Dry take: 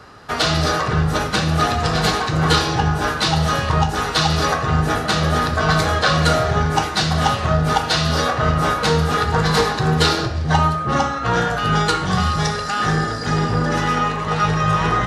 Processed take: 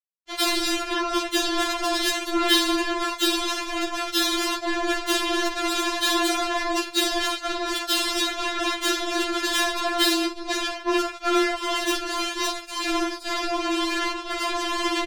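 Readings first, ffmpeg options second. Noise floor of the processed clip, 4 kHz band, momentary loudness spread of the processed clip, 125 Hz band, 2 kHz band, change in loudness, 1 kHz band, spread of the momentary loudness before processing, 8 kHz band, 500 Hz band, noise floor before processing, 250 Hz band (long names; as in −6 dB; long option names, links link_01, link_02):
−38 dBFS, −1.0 dB, 6 LU, below −40 dB, −5.0 dB, −5.5 dB, −8.5 dB, 3 LU, 0.0 dB, −5.5 dB, −25 dBFS, −4.0 dB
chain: -filter_complex "[0:a]equalizer=frequency=100:width_type=o:width=0.33:gain=-11,equalizer=frequency=400:width_type=o:width=0.33:gain=10,equalizer=frequency=6300:width_type=o:width=0.33:gain=-7,aresample=16000,aresample=44100,equalizer=frequency=900:width_type=o:width=1.2:gain=-6,asplit=2[link_01][link_02];[link_02]adelay=45,volume=-9dB[link_03];[link_01][link_03]amix=inputs=2:normalize=0,aecho=1:1:182|364|546|728:0.106|0.0583|0.032|0.0176,acrusher=bits=2:mix=0:aa=0.5,bandreject=frequency=1900:width=5.4,afftfilt=real='re*4*eq(mod(b,16),0)':imag='im*4*eq(mod(b,16),0)':win_size=2048:overlap=0.75"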